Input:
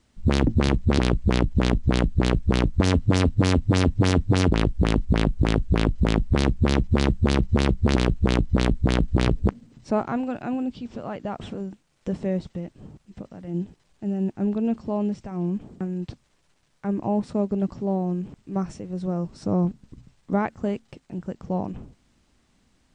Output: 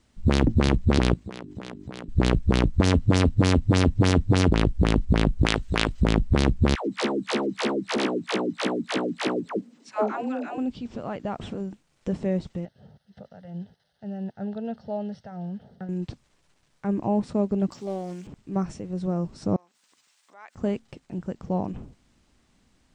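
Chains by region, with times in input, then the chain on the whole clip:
1.14–2.09 s: high-pass 180 Hz + hum notches 50/100/150/200/250/300/350/400 Hz + compression 16:1, threshold -32 dBFS
5.46–6.02 s: tilt shelf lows -7.5 dB, about 670 Hz + upward compressor, threshold -32 dBFS
6.75–10.58 s: high-pass 250 Hz 24 dB/octave + phase dispersion lows, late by 125 ms, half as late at 590 Hz
12.65–15.89 s: high-pass 85 Hz + bass shelf 130 Hz -7.5 dB + static phaser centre 1.6 kHz, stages 8
17.71–18.27 s: tilt EQ +4.5 dB/octave + loudspeaker Doppler distortion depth 0.23 ms
19.56–20.55 s: compression 8:1, threshold -34 dBFS + high-pass 880 Hz + tilt EQ +2.5 dB/octave
whole clip: none

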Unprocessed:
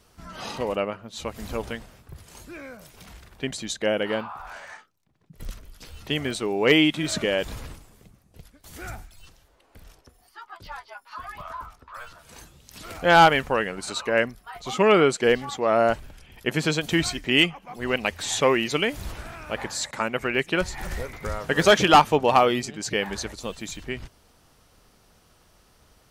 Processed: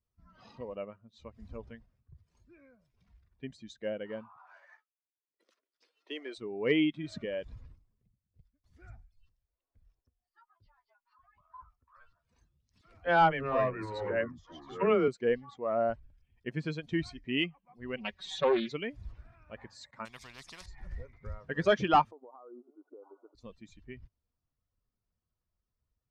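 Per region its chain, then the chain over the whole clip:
4.37–6.38 s: steep high-pass 310 Hz + waveshaping leveller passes 1
10.47–11.54 s: low-pass 9 kHz + compression, threshold -42 dBFS
12.81–15.08 s: phase dispersion lows, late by 49 ms, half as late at 360 Hz + ever faster or slower copies 283 ms, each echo -4 st, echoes 2, each echo -6 dB
17.96–18.72 s: dynamic bell 3.7 kHz, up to +5 dB, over -45 dBFS + comb 5.3 ms, depth 82% + loudspeaker Doppler distortion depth 0.3 ms
20.05–20.66 s: companded quantiser 8-bit + spectrum-flattening compressor 10:1
22.11–23.35 s: brick-wall FIR band-pass 250–1500 Hz + compression 16:1, threshold -29 dBFS
whole clip: expander on every frequency bin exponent 1.5; low-pass 4.8 kHz 12 dB/octave; treble shelf 2.6 kHz -10.5 dB; trim -6 dB

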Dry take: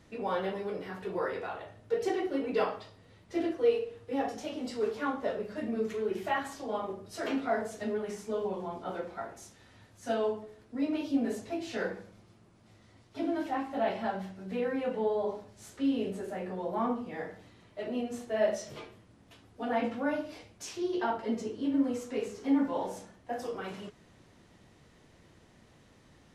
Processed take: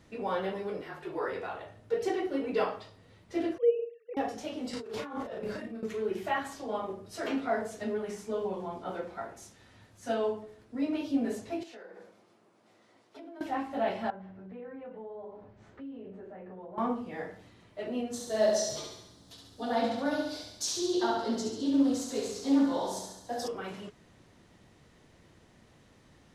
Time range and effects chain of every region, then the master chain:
0.81–1.28 s: frequency shift -35 Hz + tone controls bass -11 dB, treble -2 dB
3.58–4.17 s: formants replaced by sine waves + tape noise reduction on one side only encoder only
4.73–5.83 s: compressor with a negative ratio -41 dBFS + doubling 35 ms -2.5 dB
11.63–13.41 s: high-pass 380 Hz + compression 12:1, threshold -46 dBFS + tilt shelf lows +3.5 dB, about 1.4 kHz
14.10–16.78 s: low-pass 1.8 kHz + compression 3:1, threshold -45 dBFS
18.13–23.48 s: resonant high shelf 3.2 kHz +7.5 dB, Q 3 + thinning echo 69 ms, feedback 58%, high-pass 170 Hz, level -4.5 dB + loudspeaker Doppler distortion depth 0.13 ms
whole clip: none

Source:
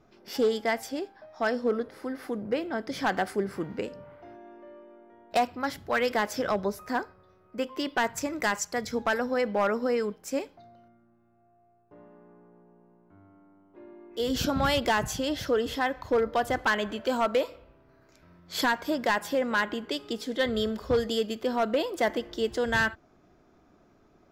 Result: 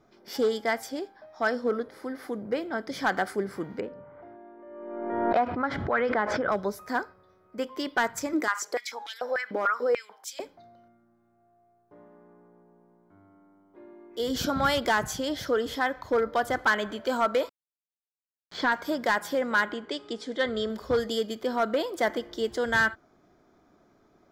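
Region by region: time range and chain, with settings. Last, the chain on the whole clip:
3.80–6.52 s: low-pass 1.8 kHz + swell ahead of each attack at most 35 dB/s
8.33–10.40 s: compression 2.5:1, threshold -30 dBFS + step-sequenced high-pass 6.8 Hz 300–3400 Hz
17.49–18.72 s: word length cut 6-bit, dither none + distance through air 180 m
19.72–20.70 s: steep low-pass 9.4 kHz + tone controls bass -3 dB, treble -4 dB
whole clip: bass shelf 120 Hz -7 dB; band-stop 2.7 kHz, Q 7.2; dynamic bell 1.4 kHz, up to +5 dB, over -43 dBFS, Q 3.4

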